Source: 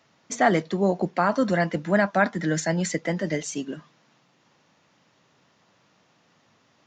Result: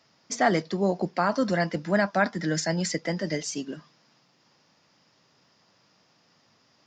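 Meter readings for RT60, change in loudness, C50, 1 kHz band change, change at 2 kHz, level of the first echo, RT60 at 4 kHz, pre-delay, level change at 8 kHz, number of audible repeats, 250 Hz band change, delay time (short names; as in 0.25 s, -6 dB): none, -2.5 dB, none, -2.5 dB, -2.5 dB, none, none, none, -0.5 dB, none, -2.5 dB, none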